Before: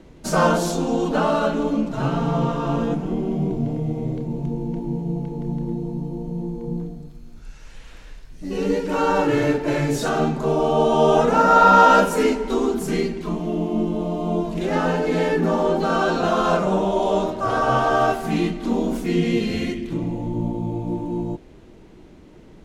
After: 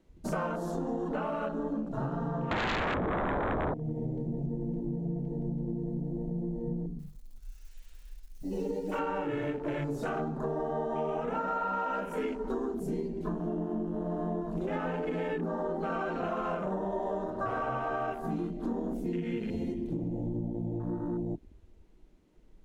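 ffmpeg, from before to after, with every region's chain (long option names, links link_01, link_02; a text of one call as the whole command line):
ffmpeg -i in.wav -filter_complex "[0:a]asettb=1/sr,asplit=3[link_01][link_02][link_03];[link_01]atrim=end=2.514[link_04];[link_02]atrim=start=2.51:end=3.74,asetpts=PTS-STARTPTS,afade=type=in:duration=0.004:curve=qsin,afade=type=out:start_time=1.226:duration=0.004:curve=qsin,lowpass=frequency=1400:width=0.5412,lowpass=frequency=1400:width=1.3066,aeval=exprs='0.266*sin(PI/2*6.31*val(0)/0.266)':channel_layout=same[link_05];[link_03]atrim=start=3.736[link_06];[link_04][link_05]acrossfade=duration=0.004:curve1=hsin:curve2=qsin[link_07];[link_07][link_06]acrossfade=duration=0.004:curve1=qsin:curve2=hsin,asettb=1/sr,asplit=3[link_08][link_09][link_10];[link_08]atrim=end=6.994[link_11];[link_09]atrim=start=6.99:end=8.99,asetpts=PTS-STARTPTS,afade=type=in:duration=0.004:curve=qsin,afade=type=out:start_time=1.996:duration=0.004:curve=qsin,highshelf=frequency=2800:gain=10.5,flanger=delay=5.6:depth=4.8:regen=-20:speed=1.9:shape=sinusoidal,acrusher=bits=9:dc=4:mix=0:aa=0.000001[link_12];[link_10]atrim=start=8.986[link_13];[link_11][link_12]acrossfade=duration=0.004:curve1=hsin:curve2=qsin[link_14];[link_14][link_13]acrossfade=duration=0.004:curve1=qsin:curve2=hsin,afwtdn=0.0316,highshelf=frequency=8200:gain=9.5,acompressor=threshold=-26dB:ratio=10,volume=-3.5dB" out.wav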